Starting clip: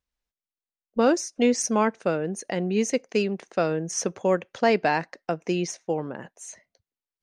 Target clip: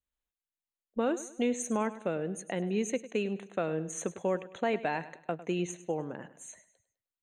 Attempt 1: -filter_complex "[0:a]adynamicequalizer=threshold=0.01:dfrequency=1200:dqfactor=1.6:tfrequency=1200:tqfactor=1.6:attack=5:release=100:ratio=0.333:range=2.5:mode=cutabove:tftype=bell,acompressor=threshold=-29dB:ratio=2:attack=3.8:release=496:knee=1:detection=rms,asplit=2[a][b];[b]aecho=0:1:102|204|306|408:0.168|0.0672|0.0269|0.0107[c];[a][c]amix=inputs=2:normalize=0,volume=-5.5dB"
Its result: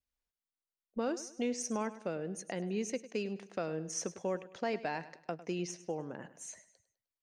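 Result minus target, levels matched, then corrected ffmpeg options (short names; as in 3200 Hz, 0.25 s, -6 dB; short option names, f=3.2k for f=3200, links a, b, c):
compressor: peak gain reduction +5 dB; 4000 Hz band +3.5 dB
-filter_complex "[0:a]adynamicequalizer=threshold=0.01:dfrequency=1200:dqfactor=1.6:tfrequency=1200:tqfactor=1.6:attack=5:release=100:ratio=0.333:range=2.5:mode=cutabove:tftype=bell,asuperstop=centerf=5100:order=12:qfactor=2.5,acompressor=threshold=-19dB:ratio=2:attack=3.8:release=496:knee=1:detection=rms,asplit=2[a][b];[b]aecho=0:1:102|204|306|408:0.168|0.0672|0.0269|0.0107[c];[a][c]amix=inputs=2:normalize=0,volume=-5.5dB"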